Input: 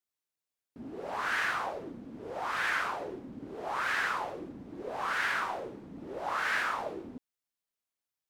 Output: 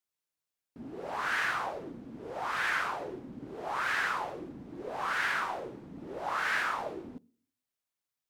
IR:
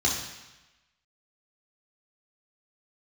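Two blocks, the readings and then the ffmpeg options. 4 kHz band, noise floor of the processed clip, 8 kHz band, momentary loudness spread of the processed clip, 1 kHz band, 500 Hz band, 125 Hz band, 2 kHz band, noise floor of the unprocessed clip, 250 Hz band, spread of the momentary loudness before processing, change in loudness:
0.0 dB, below −85 dBFS, 0.0 dB, 15 LU, 0.0 dB, −0.5 dB, +1.0 dB, 0.0 dB, below −85 dBFS, −0.5 dB, 15 LU, 0.0 dB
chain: -filter_complex "[0:a]asplit=2[link_01][link_02];[link_02]lowpass=1100[link_03];[1:a]atrim=start_sample=2205,asetrate=79380,aresample=44100,lowshelf=frequency=230:gain=8.5[link_04];[link_03][link_04]afir=irnorm=-1:irlink=0,volume=-28.5dB[link_05];[link_01][link_05]amix=inputs=2:normalize=0"

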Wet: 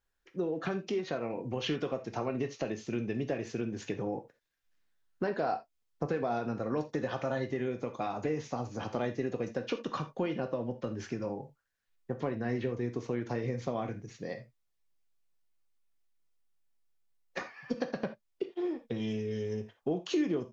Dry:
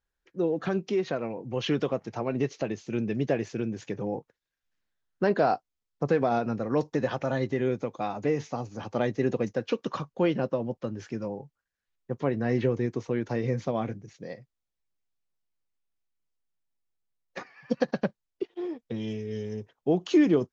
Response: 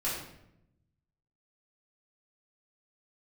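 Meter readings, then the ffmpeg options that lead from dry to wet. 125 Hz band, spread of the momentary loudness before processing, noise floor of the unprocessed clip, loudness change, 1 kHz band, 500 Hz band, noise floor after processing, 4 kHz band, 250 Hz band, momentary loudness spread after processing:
−6.0 dB, 11 LU, −85 dBFS, −6.0 dB, −5.0 dB, −6.0 dB, −78 dBFS, −2.5 dB, −6.0 dB, 7 LU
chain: -filter_complex "[0:a]acompressor=threshold=-33dB:ratio=3,asplit=2[link_01][link_02];[1:a]atrim=start_sample=2205,atrim=end_sample=3969,lowshelf=frequency=350:gain=-8.5[link_03];[link_02][link_03]afir=irnorm=-1:irlink=0,volume=-9dB[link_04];[link_01][link_04]amix=inputs=2:normalize=0"

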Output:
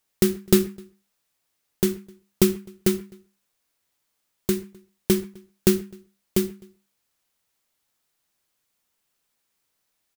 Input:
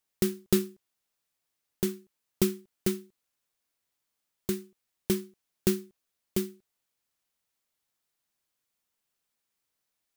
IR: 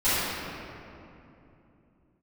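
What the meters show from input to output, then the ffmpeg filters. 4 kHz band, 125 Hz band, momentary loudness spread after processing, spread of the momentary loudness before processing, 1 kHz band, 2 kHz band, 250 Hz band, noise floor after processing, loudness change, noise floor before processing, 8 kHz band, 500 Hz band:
+7.0 dB, +7.5 dB, 12 LU, 12 LU, +7.5 dB, +7.0 dB, +7.5 dB, −76 dBFS, +7.0 dB, −83 dBFS, +7.0 dB, +7.5 dB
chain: -filter_complex "[0:a]asplit=2[link_01][link_02];[link_02]adelay=256.6,volume=-27dB,highshelf=frequency=4000:gain=-5.77[link_03];[link_01][link_03]amix=inputs=2:normalize=0,asplit=2[link_04][link_05];[1:a]atrim=start_sample=2205,atrim=end_sample=6615,lowpass=2600[link_06];[link_05][link_06]afir=irnorm=-1:irlink=0,volume=-29dB[link_07];[link_04][link_07]amix=inputs=2:normalize=0,volume=7dB"

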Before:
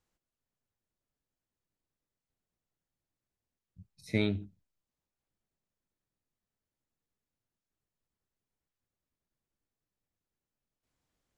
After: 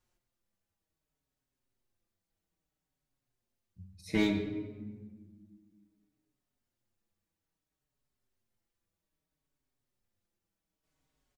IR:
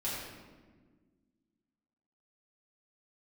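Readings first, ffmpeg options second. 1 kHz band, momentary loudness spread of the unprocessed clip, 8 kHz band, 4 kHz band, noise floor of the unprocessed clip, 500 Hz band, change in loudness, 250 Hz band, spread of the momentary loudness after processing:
+7.0 dB, 6 LU, +5.0 dB, +1.0 dB, below −85 dBFS, +0.5 dB, −0.5 dB, +3.5 dB, 21 LU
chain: -filter_complex "[0:a]volume=20dB,asoftclip=hard,volume=-20dB,asplit=2[link_01][link_02];[1:a]atrim=start_sample=2205[link_03];[link_02][link_03]afir=irnorm=-1:irlink=0,volume=-6.5dB[link_04];[link_01][link_04]amix=inputs=2:normalize=0,asplit=2[link_05][link_06];[link_06]adelay=5.1,afreqshift=-0.61[link_07];[link_05][link_07]amix=inputs=2:normalize=1,volume=2.5dB"

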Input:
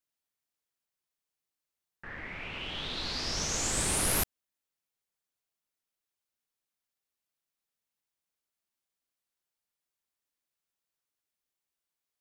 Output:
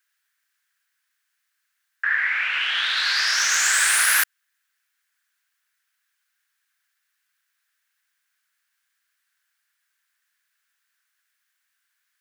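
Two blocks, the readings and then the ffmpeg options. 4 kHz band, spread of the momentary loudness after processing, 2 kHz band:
+12.5 dB, 6 LU, +20.0 dB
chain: -af "aeval=exprs='0.168*sin(PI/2*2.51*val(0)/0.168)':channel_layout=same,highpass=frequency=1600:width_type=q:width=4.9,aeval=exprs='0.473*(cos(1*acos(clip(val(0)/0.473,-1,1)))-cos(1*PI/2))+0.00266*(cos(4*acos(clip(val(0)/0.473,-1,1)))-cos(4*PI/2))':channel_layout=same"

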